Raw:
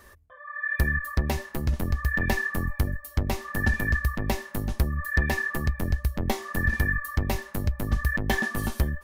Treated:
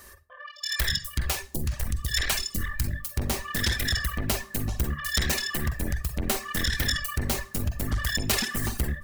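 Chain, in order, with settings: self-modulated delay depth 0.59 ms; 0.46–2.91 s: phase shifter stages 2, 2.1 Hz, lowest notch 190–1900 Hz; reverberation RT60 0.45 s, pre-delay 42 ms, DRR 4 dB; reverb removal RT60 0.76 s; saturation -19 dBFS, distortion -14 dB; treble shelf 3.6 kHz +12 dB; band-stop 3.5 kHz, Q 20

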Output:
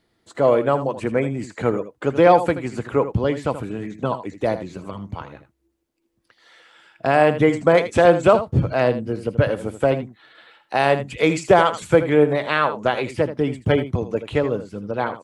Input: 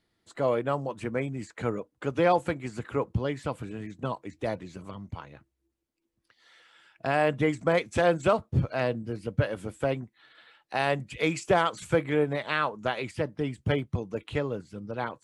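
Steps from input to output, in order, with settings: peaking EQ 500 Hz +4.5 dB 2.5 oct; on a send: delay 80 ms -12 dB; on the sum: trim +5.5 dB

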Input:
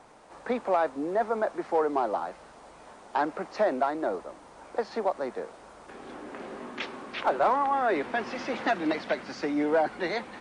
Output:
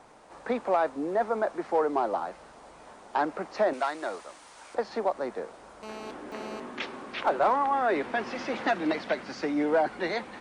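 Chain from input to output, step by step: 3.73–4.75 s: tilt shelf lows -9.5 dB, about 1.1 kHz; 5.83–6.60 s: mobile phone buzz -41 dBFS

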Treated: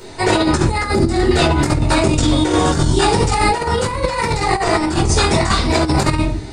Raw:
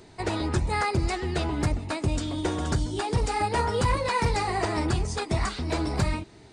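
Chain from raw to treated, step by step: tone controls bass -6 dB, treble +4 dB; reverberation RT60 0.45 s, pre-delay 7 ms, DRR -4.5 dB; compressor with a negative ratio -21 dBFS, ratio -0.5; 0.84–1.31 s: fifteen-band graphic EQ 250 Hz +8 dB, 1 kHz -6 dB, 2.5 kHz -10 dB, 6.3 kHz -5 dB; trim +6.5 dB

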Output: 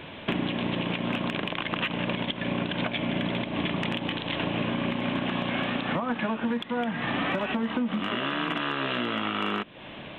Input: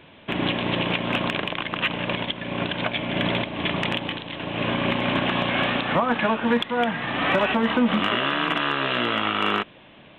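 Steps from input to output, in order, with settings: dynamic bell 220 Hz, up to +6 dB, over -36 dBFS, Q 1.1; compression 10:1, threshold -33 dBFS, peak gain reduction 21.5 dB; trim +7.5 dB

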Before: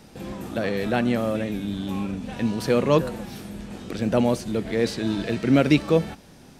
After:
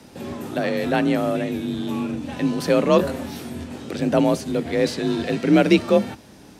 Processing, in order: 2.97–3.64 s: doubling 21 ms -3 dB; frequency shift +39 Hz; trim +2.5 dB

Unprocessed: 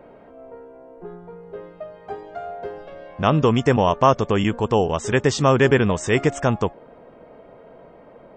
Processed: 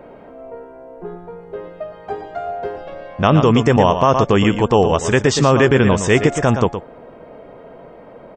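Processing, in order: on a send: delay 117 ms -10 dB; on the sum: loudness maximiser +7 dB; trim -1 dB

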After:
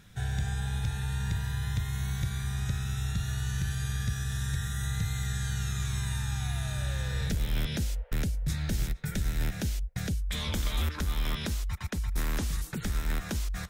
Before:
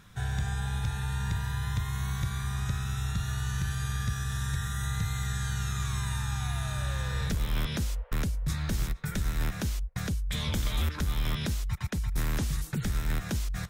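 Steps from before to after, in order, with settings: peaking EQ 1.1 kHz -10.5 dB 0.48 oct, from 10.21 s 130 Hz

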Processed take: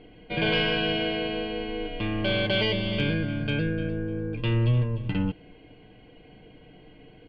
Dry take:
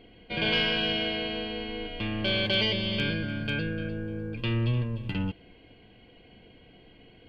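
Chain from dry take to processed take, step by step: low-pass 2 kHz 6 dB/octave; comb 6.6 ms, depth 37%; trim +3.5 dB

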